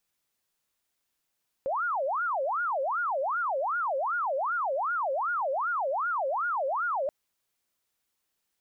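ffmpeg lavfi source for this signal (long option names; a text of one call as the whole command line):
ffmpeg -f lavfi -i "aevalsrc='0.0501*sin(2*PI*(983.5*t-456.5/(2*PI*2.6)*sin(2*PI*2.6*t)))':duration=5.43:sample_rate=44100" out.wav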